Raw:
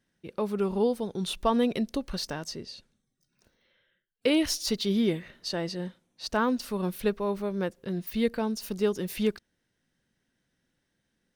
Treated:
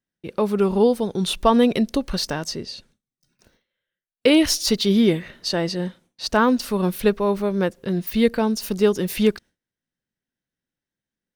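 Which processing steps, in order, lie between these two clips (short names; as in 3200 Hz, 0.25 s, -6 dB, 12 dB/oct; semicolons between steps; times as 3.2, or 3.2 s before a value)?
gate with hold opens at -57 dBFS; gain +8.5 dB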